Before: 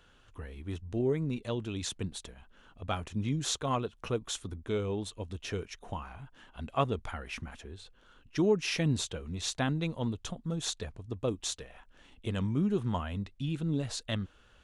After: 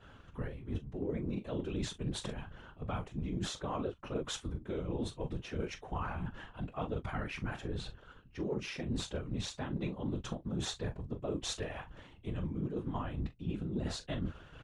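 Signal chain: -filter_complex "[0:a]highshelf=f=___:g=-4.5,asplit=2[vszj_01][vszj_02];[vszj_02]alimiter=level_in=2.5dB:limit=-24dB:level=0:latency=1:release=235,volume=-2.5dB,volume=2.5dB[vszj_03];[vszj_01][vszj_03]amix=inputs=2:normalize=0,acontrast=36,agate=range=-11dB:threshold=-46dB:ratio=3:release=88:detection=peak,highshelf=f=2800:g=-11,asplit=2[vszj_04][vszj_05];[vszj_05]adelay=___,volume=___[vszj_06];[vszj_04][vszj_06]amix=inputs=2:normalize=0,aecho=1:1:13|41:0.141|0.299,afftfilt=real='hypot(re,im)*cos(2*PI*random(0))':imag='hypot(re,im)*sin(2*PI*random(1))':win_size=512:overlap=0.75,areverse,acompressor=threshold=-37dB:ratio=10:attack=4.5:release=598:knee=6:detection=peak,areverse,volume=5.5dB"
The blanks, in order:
7100, 21, -11dB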